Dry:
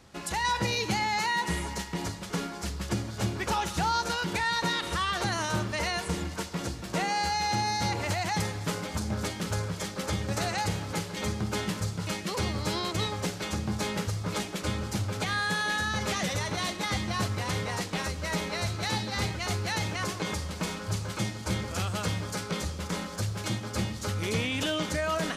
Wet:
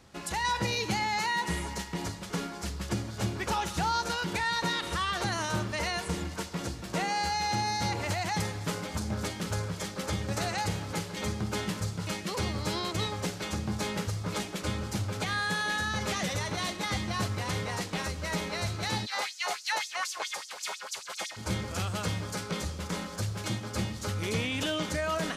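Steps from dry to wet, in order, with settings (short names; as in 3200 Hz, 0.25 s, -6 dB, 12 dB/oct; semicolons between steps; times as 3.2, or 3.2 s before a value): 19.05–21.36 LFO high-pass sine 2.8 Hz -> 9.5 Hz 610–6500 Hz; gain -1.5 dB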